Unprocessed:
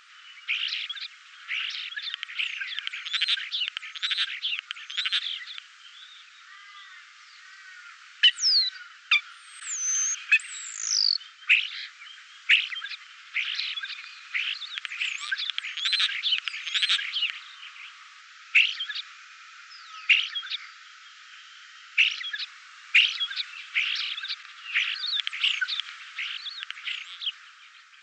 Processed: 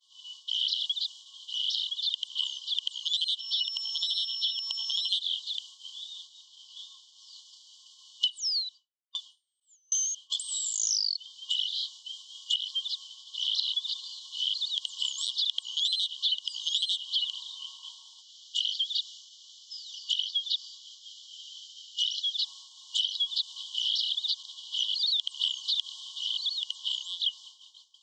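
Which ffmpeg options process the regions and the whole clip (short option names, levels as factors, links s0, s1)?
-filter_complex "[0:a]asettb=1/sr,asplit=3[s0][s1][s2];[s0]atrim=end=3.394[s3];[s1]atrim=start=3.39:end=5.09,asetpts=PTS-STARTPTS,afade=t=in:d=0.004:c=qsin,afade=t=out:st=1.696:d=0.004:c=qsin,equalizer=f=1100:w=0.45:g=10.5,acompressor=threshold=0.0251:ratio=2.5:attack=3.2:release=140:knee=1:detection=peak,aeval=exprs='val(0)+0.0112*sin(2*PI*5400*n/s)':c=same[s4];[s2]atrim=start=5.086[s5];[s3][s4]acrossfade=d=0.004:c1=hsin:c2=qsin[s6];[s6][s5]acrossfade=d=0.004:c1=qsin:c2=hsin,asettb=1/sr,asplit=3[s7][s8][s9];[s7]atrim=end=8.384[s10];[s8]atrim=start=8.38:end=10.3,asetpts=PTS-STARTPTS,afade=t=in:d=0.004:c=qsin,afade=t=out:st=1.916:d=0.004:c=qsin,equalizer=f=4800:w=1.4:g=-5,aeval=exprs='val(0)*pow(10,-31*if(lt(mod(1.3*n/s,1),2*abs(1.3)/1000),1-mod(1.3*n/s,1)/(2*abs(1.3)/1000),(mod(1.3*n/s,1)-2*abs(1.3)/1000)/(1-2*abs(1.3)/1000))/20)':c=same[s11];[s9]atrim=start=10.296[s12];[s10][s11]acrossfade=d=0.004:c1=hsin:c2=qsin[s13];[s13][s12]acrossfade=d=0.004:c1=qsin:c2=hsin,afftfilt=real='re*(1-between(b*sr/4096,1100,2900))':imag='im*(1-between(b*sr/4096,1100,2900))':win_size=4096:overlap=0.75,agate=range=0.0224:threshold=0.00316:ratio=3:detection=peak,acompressor=threshold=0.0282:ratio=20,volume=2.11"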